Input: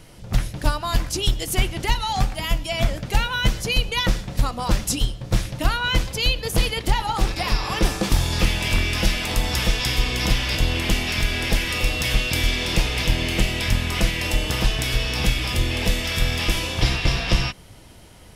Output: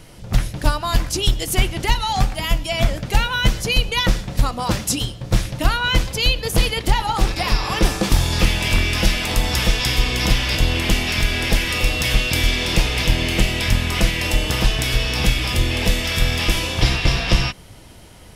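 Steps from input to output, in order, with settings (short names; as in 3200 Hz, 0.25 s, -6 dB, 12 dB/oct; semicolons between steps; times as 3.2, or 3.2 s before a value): 4.57–5.21 HPF 77 Hz; gain +3 dB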